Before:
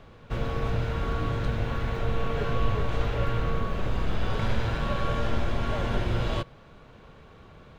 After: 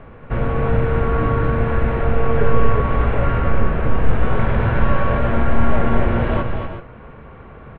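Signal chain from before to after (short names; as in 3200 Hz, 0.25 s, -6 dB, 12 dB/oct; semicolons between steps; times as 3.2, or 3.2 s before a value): LPF 2300 Hz 24 dB/oct; in parallel at -11.5 dB: soft clip -26.5 dBFS, distortion -10 dB; on the sum: tapped delay 0.236/0.331/0.369/0.38 s -6/-17/-13.5/-14.5 dB; reverb, pre-delay 4 ms, DRR 12 dB; gain +7.5 dB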